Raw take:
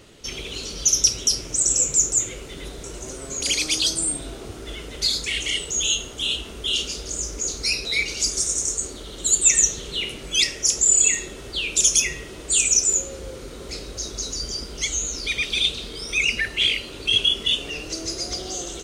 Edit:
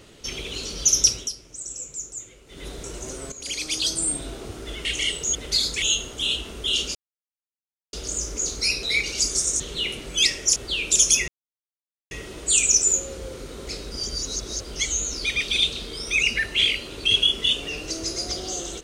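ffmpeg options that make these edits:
ffmpeg -i in.wav -filter_complex "[0:a]asplit=13[link_01][link_02][link_03][link_04][link_05][link_06][link_07][link_08][link_09][link_10][link_11][link_12][link_13];[link_01]atrim=end=1.33,asetpts=PTS-STARTPTS,afade=type=out:start_time=1.09:duration=0.24:silence=0.177828[link_14];[link_02]atrim=start=1.33:end=2.46,asetpts=PTS-STARTPTS,volume=-15dB[link_15];[link_03]atrim=start=2.46:end=3.32,asetpts=PTS-STARTPTS,afade=type=in:duration=0.24:silence=0.177828,afade=type=out:start_time=0.856:duration=0.004:curve=hsin:silence=0.211349[link_16];[link_04]atrim=start=3.32:end=4.852,asetpts=PTS-STARTPTS,afade=type=in:duration=0.82:silence=0.211349[link_17];[link_05]atrim=start=5.318:end=5.822[link_18];[link_06]atrim=start=4.848:end=5.322[link_19];[link_07]atrim=start=5.818:end=6.95,asetpts=PTS-STARTPTS,afade=type=out:start_time=1.128:duration=0.004:curve=hsin,apad=pad_dur=0.98[link_20];[link_08]atrim=start=6.95:end=8.622,asetpts=PTS-STARTPTS,afade=type=in:duration=0.004:curve=hsin[link_21];[link_09]atrim=start=9.768:end=10.732[link_22];[link_10]atrim=start=11.408:end=12.13,asetpts=PTS-STARTPTS,afade=type=out:start_time=0.718:duration=0.004:curve=hsin,apad=pad_dur=0.83[link_23];[link_11]atrim=start=12.13:end=13.932,asetpts=PTS-STARTPTS,afade=type=in:duration=0.004:curve=hsin[link_24];[link_12]atrim=start=13.928:end=14.672,asetpts=PTS-STARTPTS,areverse[link_25];[link_13]atrim=start=14.668[link_26];[link_14][link_15][link_16][link_17]concat=n=4:v=0:a=1[link_27];[link_27][link_18]acrossfade=duration=0.004:curve1=hsin:curve2=hsin[link_28];[link_28][link_19]acrossfade=duration=0.004:curve1=hsin:curve2=hsin[link_29];[link_20][link_21]concat=n=2:v=0:a=1[link_30];[link_29][link_30]acrossfade=duration=0.004:curve1=hsin:curve2=hsin[link_31];[link_31][link_22]acrossfade=duration=0.004:curve1=hsin:curve2=hsin[link_32];[link_23][link_24]concat=n=2:v=0:a=1[link_33];[link_32][link_33]acrossfade=duration=0.004:curve1=hsin:curve2=hsin[link_34];[link_34][link_25]acrossfade=duration=0.004:curve1=hsin:curve2=hsin[link_35];[link_35][link_26]acrossfade=duration=0.004:curve1=hsin:curve2=hsin" out.wav

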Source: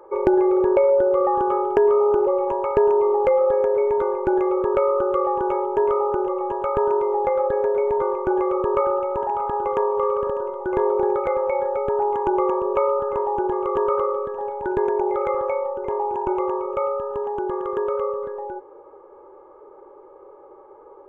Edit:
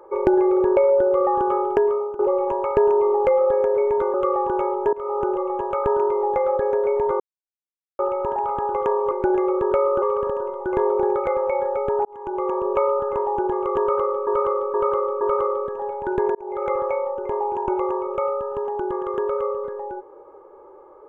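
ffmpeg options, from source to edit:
ffmpeg -i in.wav -filter_complex "[0:a]asplit=13[link_01][link_02][link_03][link_04][link_05][link_06][link_07][link_08][link_09][link_10][link_11][link_12][link_13];[link_01]atrim=end=2.19,asetpts=PTS-STARTPTS,afade=type=out:start_time=1.71:duration=0.48:silence=0.112202[link_14];[link_02]atrim=start=2.19:end=4.142,asetpts=PTS-STARTPTS,afade=type=in:duration=0.004:curve=hsin:silence=0.112202[link_15];[link_03]atrim=start=5.048:end=5.84,asetpts=PTS-STARTPTS,afade=type=out:start_time=0.788:duration=0.004:curve=hsin:silence=0.0749894[link_16];[link_04]atrim=start=5.84:end=8.11,asetpts=PTS-STARTPTS,afade=type=in:duration=0.3:silence=0.0749894,afade=type=out:start_time=2.266:duration=0.004:curve=hsin[link_17];[link_05]atrim=start=8.11:end=8.9,asetpts=PTS-STARTPTS,volume=0[link_18];[link_06]atrim=start=8.9:end=10.022,asetpts=PTS-STARTPTS,afade=type=in:duration=0.004:curve=hsin[link_19];[link_07]atrim=start=4.138:end=5.052[link_20];[link_08]atrim=start=10.018:end=12.05,asetpts=PTS-STARTPTS,afade=type=out:start_time=2.028:duration=0.004:curve=hsin[link_21];[link_09]atrim=start=12.05:end=14.272,asetpts=PTS-STARTPTS,afade=type=in:duration=0.61[link_22];[link_10]atrim=start=13.798:end=14.272[link_23];[link_11]atrim=start=13.798:end=14.272[link_24];[link_12]atrim=start=13.798:end=14.94,asetpts=PTS-STARTPTS,afade=type=out:start_time=1.138:duration=0.004:curve=hsin[link_25];[link_13]atrim=start=14.94,asetpts=PTS-STARTPTS,afade=type=in:duration=0.36[link_26];[link_14][link_15]concat=n=2:v=0:a=1[link_27];[link_16][link_17][link_18][link_19]concat=n=4:v=0:a=1[link_28];[link_27][link_28]acrossfade=duration=0.004:curve1=hsin:curve2=hsin[link_29];[link_29][link_20]acrossfade=duration=0.004:curve1=hsin:curve2=hsin[link_30];[link_21][link_22]concat=n=2:v=0:a=1[link_31];[link_30][link_31]acrossfade=duration=0.004:curve1=hsin:curve2=hsin[link_32];[link_32][link_23]acrossfade=duration=0.004:curve1=hsin:curve2=hsin[link_33];[link_33][link_24]acrossfade=duration=0.004:curve1=hsin:curve2=hsin[link_34];[link_25][link_26]concat=n=2:v=0:a=1[link_35];[link_34][link_35]acrossfade=duration=0.004:curve1=hsin:curve2=hsin" out.wav

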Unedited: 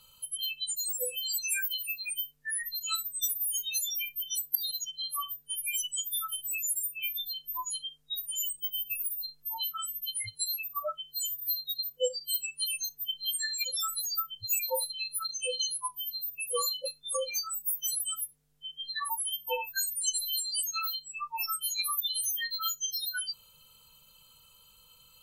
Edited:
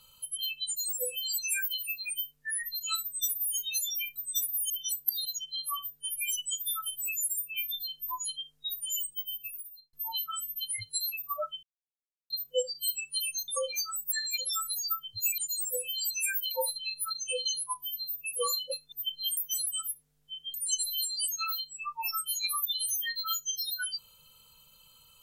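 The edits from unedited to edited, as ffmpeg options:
ffmpeg -i in.wav -filter_complex "[0:a]asplit=13[link_01][link_02][link_03][link_04][link_05][link_06][link_07][link_08][link_09][link_10][link_11][link_12][link_13];[link_01]atrim=end=4.162[link_14];[link_02]atrim=start=3.028:end=3.572[link_15];[link_03]atrim=start=4.158:end=9.39,asetpts=PTS-STARTPTS,afade=type=out:start_time=4.302:duration=0.93[link_16];[link_04]atrim=start=9.39:end=11.09,asetpts=PTS-STARTPTS,afade=type=in:duration=0.004:curve=hsin,afade=type=out:start_time=1.696:duration=0.004:curve=hsin[link_17];[link_05]atrim=start=11.09:end=11.76,asetpts=PTS-STARTPTS,volume=0[link_18];[link_06]atrim=start=11.76:end=12.942,asetpts=PTS-STARTPTS,afade=type=in:duration=0.004:curve=hsin[link_19];[link_07]atrim=start=17.058:end=17.702[link_20];[link_08]atrim=start=13.388:end=14.652[link_21];[link_09]atrim=start=0.658:end=1.792[link_22];[link_10]atrim=start=14.648:end=17.062[link_23];[link_11]atrim=start=12.938:end=13.392[link_24];[link_12]atrim=start=17.698:end=18.872[link_25];[link_13]atrim=start=19.888[link_26];[link_14][link_15]acrossfade=duration=0.004:curve1=hsin:curve2=hsin[link_27];[link_16][link_17][link_18][link_19]concat=n=4:v=0:a=1[link_28];[link_27][link_28]acrossfade=duration=0.004:curve1=hsin:curve2=hsin[link_29];[link_29][link_20]acrossfade=duration=0.004:curve1=hsin:curve2=hsin[link_30];[link_30][link_21]acrossfade=duration=0.004:curve1=hsin:curve2=hsin[link_31];[link_31][link_22]acrossfade=duration=0.004:curve1=hsin:curve2=hsin[link_32];[link_32][link_23]acrossfade=duration=0.004:curve1=hsin:curve2=hsin[link_33];[link_33][link_24]acrossfade=duration=0.004:curve1=hsin:curve2=hsin[link_34];[link_34][link_25]acrossfade=duration=0.004:curve1=hsin:curve2=hsin[link_35];[link_35][link_26]acrossfade=duration=0.004:curve1=hsin:curve2=hsin" out.wav

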